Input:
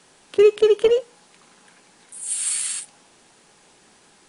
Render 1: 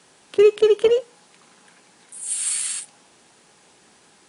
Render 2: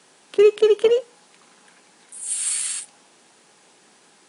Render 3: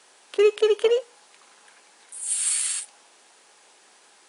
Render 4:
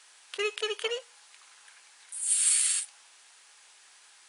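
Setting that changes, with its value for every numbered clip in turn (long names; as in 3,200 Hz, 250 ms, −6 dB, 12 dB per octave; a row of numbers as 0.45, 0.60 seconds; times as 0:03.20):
high-pass filter, corner frequency: 57, 170, 480, 1,300 Hertz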